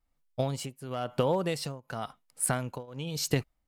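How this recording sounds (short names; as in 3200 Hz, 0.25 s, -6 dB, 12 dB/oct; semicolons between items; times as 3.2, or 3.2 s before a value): tremolo triangle 0.96 Hz, depth 95%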